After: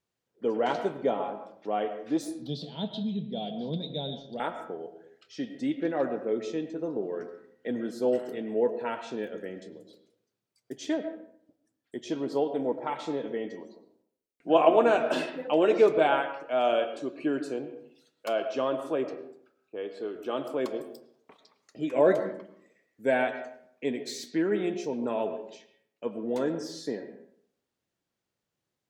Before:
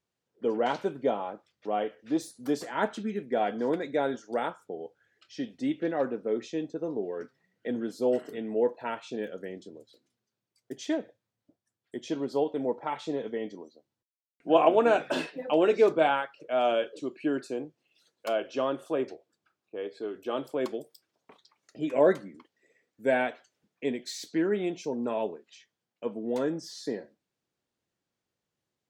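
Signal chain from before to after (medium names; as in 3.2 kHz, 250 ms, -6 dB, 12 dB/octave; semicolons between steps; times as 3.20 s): 2.42–4.40 s: FFT filter 110 Hz 0 dB, 160 Hz +14 dB, 290 Hz -10 dB, 680 Hz -9 dB, 1.4 kHz -24 dB, 2 kHz -24 dB, 3.7 kHz +13 dB, 7.1 kHz -20 dB; reverberation RT60 0.65 s, pre-delay 65 ms, DRR 9 dB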